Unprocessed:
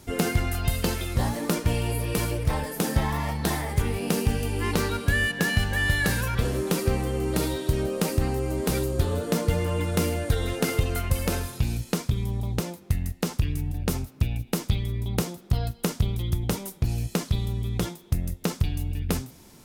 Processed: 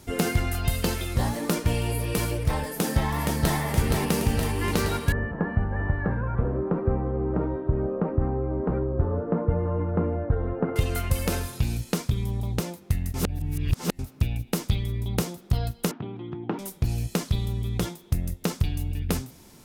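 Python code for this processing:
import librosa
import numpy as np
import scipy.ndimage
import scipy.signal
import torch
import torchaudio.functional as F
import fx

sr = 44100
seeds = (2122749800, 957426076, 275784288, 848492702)

y = fx.echo_throw(x, sr, start_s=2.69, length_s=0.89, ms=470, feedback_pct=70, wet_db=-3.5)
y = fx.lowpass(y, sr, hz=1300.0, slope=24, at=(5.12, 10.76))
y = fx.cabinet(y, sr, low_hz=160.0, low_slope=24, high_hz=2300.0, hz=(180.0, 320.0, 540.0, 800.0, 2100.0), db=(-5, 8, -8, 4, -7), at=(15.91, 16.59))
y = fx.edit(y, sr, fx.reverse_span(start_s=13.14, length_s=0.85), tone=tone)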